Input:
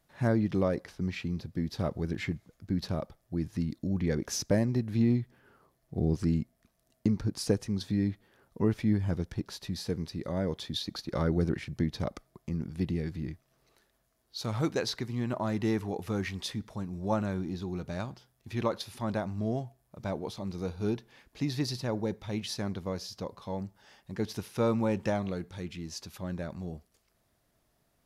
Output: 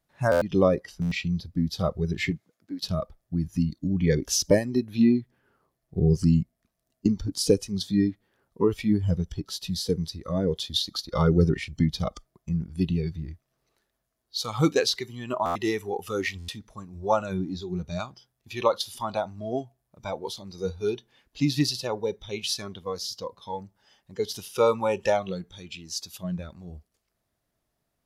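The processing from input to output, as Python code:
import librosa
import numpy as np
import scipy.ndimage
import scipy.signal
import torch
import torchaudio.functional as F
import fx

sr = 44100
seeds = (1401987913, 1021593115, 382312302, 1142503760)

y = fx.highpass(x, sr, hz=fx.line((2.3, 120.0), (2.81, 440.0)), slope=12, at=(2.3, 2.81), fade=0.02)
y = fx.noise_reduce_blind(y, sr, reduce_db=15)
y = fx.buffer_glitch(y, sr, at_s=(0.31, 1.01, 15.45, 16.38), block=512, repeats=8)
y = F.gain(torch.from_numpy(y), 9.0).numpy()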